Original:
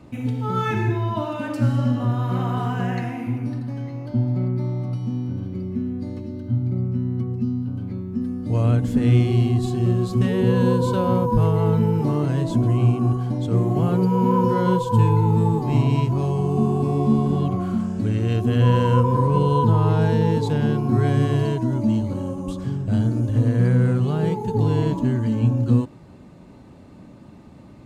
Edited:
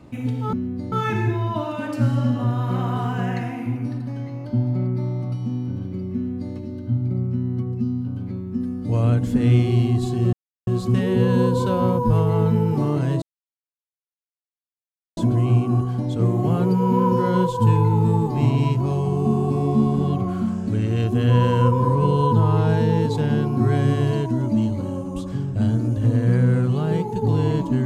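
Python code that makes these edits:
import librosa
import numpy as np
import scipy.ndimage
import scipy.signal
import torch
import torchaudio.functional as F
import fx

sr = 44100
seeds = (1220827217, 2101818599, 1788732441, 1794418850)

y = fx.edit(x, sr, fx.duplicate(start_s=5.76, length_s=0.39, to_s=0.53),
    fx.insert_silence(at_s=9.94, length_s=0.34),
    fx.insert_silence(at_s=12.49, length_s=1.95), tone=tone)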